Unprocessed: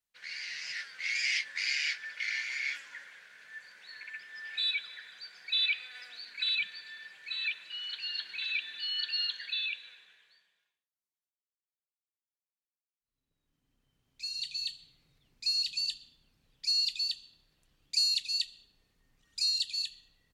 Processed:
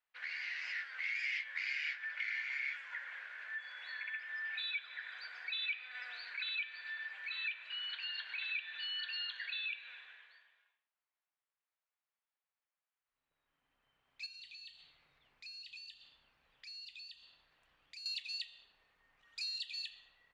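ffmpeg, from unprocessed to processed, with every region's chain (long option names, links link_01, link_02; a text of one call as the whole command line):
ffmpeg -i in.wav -filter_complex "[0:a]asettb=1/sr,asplit=3[link_01][link_02][link_03];[link_01]atrim=end=3.584[link_04];[link_02]atrim=start=3.58:end=4.19,asetpts=PTS-STARTPTS,afade=type=in:duration=0.004:curve=qsin,afade=type=out:start_time=0.606:duration=0.004:curve=qsin,highpass=frequency=270:poles=1,aeval=exprs='val(0)+0.002*sin(2*PI*3400*n/s)':channel_layout=same[link_05];[link_03]atrim=start=4.186[link_06];[link_04][link_05]acrossfade=duration=0.004:curve1=hsin:curve2=qsin[link_07];[link_07][link_06]acrossfade=duration=0.004:curve1=qsin:curve2=hsin,asettb=1/sr,asplit=3[link_08][link_09][link_10];[link_08]atrim=end=14.264[link_11];[link_09]atrim=start=14.26:end=18.06,asetpts=PTS-STARTPTS,afade=type=in:duration=0.004:curve=qsin,afade=type=out:start_time=3.796:duration=0.004:curve=qsin,acompressor=threshold=-52dB:ratio=2.5:attack=3.2:release=140:knee=1:detection=peak,aeval=exprs='val(0)+0.000126*(sin(2*PI*60*n/s)+sin(2*PI*2*60*n/s)/2+sin(2*PI*3*60*n/s)/3+sin(2*PI*4*60*n/s)/4+sin(2*PI*5*60*n/s)/5)':channel_layout=same[link_12];[link_10]atrim=start=18.056[link_13];[link_11][link_12]acrossfade=duration=0.004:curve1=hsin:curve2=qsin[link_14];[link_14][link_13]acrossfade=duration=0.004:curve1=qsin:curve2=hsin,acrossover=split=600 2800:gain=0.1 1 0.0794[link_15][link_16][link_17];[link_15][link_16][link_17]amix=inputs=3:normalize=0,bandreject=frequency=116.3:width_type=h:width=4,bandreject=frequency=232.6:width_type=h:width=4,bandreject=frequency=348.9:width_type=h:width=4,bandreject=frequency=465.2:width_type=h:width=4,bandreject=frequency=581.5:width_type=h:width=4,bandreject=frequency=697.8:width_type=h:width=4,bandreject=frequency=814.1:width_type=h:width=4,bandreject=frequency=930.4:width_type=h:width=4,bandreject=frequency=1046.7:width_type=h:width=4,bandreject=frequency=1163:width_type=h:width=4,bandreject=frequency=1279.3:width_type=h:width=4,bandreject=frequency=1395.6:width_type=h:width=4,bandreject=frequency=1511.9:width_type=h:width=4,bandreject=frequency=1628.2:width_type=h:width=4,bandreject=frequency=1744.5:width_type=h:width=4,bandreject=frequency=1860.8:width_type=h:width=4,bandreject=frequency=1977.1:width_type=h:width=4,bandreject=frequency=2093.4:width_type=h:width=4,bandreject=frequency=2209.7:width_type=h:width=4,bandreject=frequency=2326:width_type=h:width=4,bandreject=frequency=2442.3:width_type=h:width=4,bandreject=frequency=2558.6:width_type=h:width=4,bandreject=frequency=2674.9:width_type=h:width=4,bandreject=frequency=2791.2:width_type=h:width=4,bandreject=frequency=2907.5:width_type=h:width=4,bandreject=frequency=3023.8:width_type=h:width=4,bandreject=frequency=3140.1:width_type=h:width=4,bandreject=frequency=3256.4:width_type=h:width=4,bandreject=frequency=3372.7:width_type=h:width=4,bandreject=frequency=3489:width_type=h:width=4,bandreject=frequency=3605.3:width_type=h:width=4,bandreject=frequency=3721.6:width_type=h:width=4,bandreject=frequency=3837.9:width_type=h:width=4,bandreject=frequency=3954.2:width_type=h:width=4,acompressor=threshold=-50dB:ratio=2.5,volume=8.5dB" out.wav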